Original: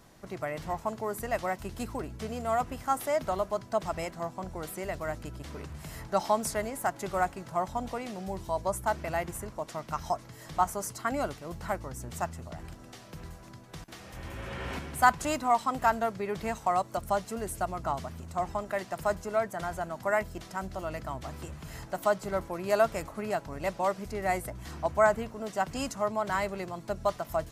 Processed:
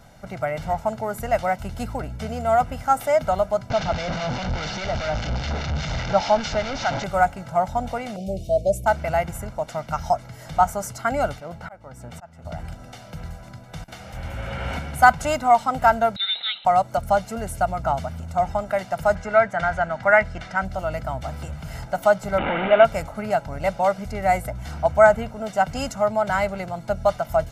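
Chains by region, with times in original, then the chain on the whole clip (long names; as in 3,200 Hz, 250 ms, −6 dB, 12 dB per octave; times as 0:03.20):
0:03.70–0:07.04: linear delta modulator 32 kbit/s, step −26 dBFS + two-band tremolo in antiphase 4.9 Hz, depth 50%, crossover 1,300 Hz
0:08.16–0:08.86: Chebyshev band-stop filter 680–2,400 Hz, order 4 + dynamic equaliser 430 Hz, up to +6 dB, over −45 dBFS, Q 1.3
0:11.40–0:12.45: high-pass filter 220 Hz 6 dB per octave + high-shelf EQ 4,300 Hz −10 dB + volume swells 374 ms
0:16.16–0:16.65: voice inversion scrambler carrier 4,000 Hz + high-pass filter 420 Hz
0:19.15–0:20.65: low-pass filter 6,100 Hz + parametric band 1,800 Hz +9 dB 0.98 octaves
0:22.38–0:22.85: linear delta modulator 16 kbit/s, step −23 dBFS + low shelf with overshoot 170 Hz −10.5 dB, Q 1.5
whole clip: high-shelf EQ 4,600 Hz −6.5 dB; comb filter 1.4 ms, depth 64%; level +6.5 dB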